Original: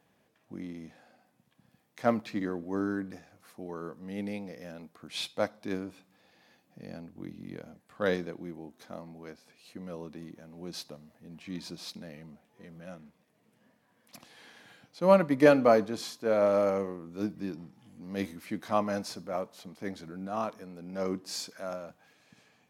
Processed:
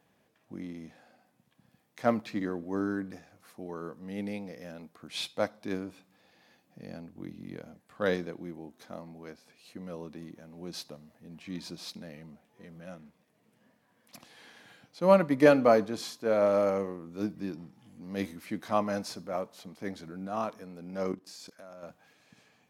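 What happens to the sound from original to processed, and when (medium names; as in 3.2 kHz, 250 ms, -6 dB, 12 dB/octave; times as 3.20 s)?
21.12–21.83 s: level held to a coarse grid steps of 16 dB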